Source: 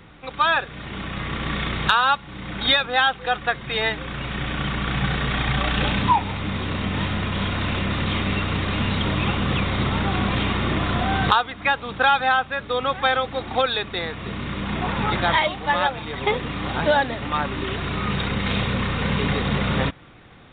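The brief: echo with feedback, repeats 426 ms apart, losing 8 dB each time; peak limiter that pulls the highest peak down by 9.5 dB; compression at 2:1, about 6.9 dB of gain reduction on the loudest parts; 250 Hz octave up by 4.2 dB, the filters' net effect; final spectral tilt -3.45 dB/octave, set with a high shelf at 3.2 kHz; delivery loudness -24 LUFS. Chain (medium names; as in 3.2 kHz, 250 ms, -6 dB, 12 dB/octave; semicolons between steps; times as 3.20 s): peaking EQ 250 Hz +5.5 dB; treble shelf 3.2 kHz +7.5 dB; compression 2:1, threshold -24 dBFS; peak limiter -17 dBFS; feedback delay 426 ms, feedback 40%, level -8 dB; trim +2 dB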